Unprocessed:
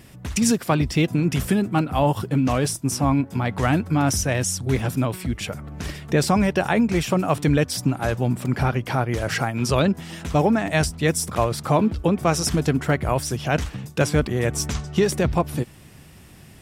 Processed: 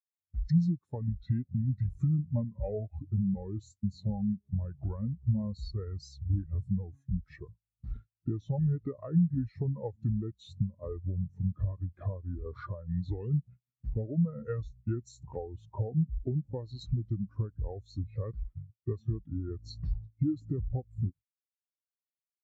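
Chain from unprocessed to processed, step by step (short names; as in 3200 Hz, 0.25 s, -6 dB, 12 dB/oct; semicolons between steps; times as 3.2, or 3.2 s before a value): in parallel at -4.5 dB: requantised 6-bit, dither triangular; on the sum: gate -27 dBFS, range -18 dB; speed mistake 45 rpm record played at 33 rpm; compressor 16:1, threshold -20 dBFS, peak gain reduction 12.5 dB; spectral expander 2.5:1; gain -8.5 dB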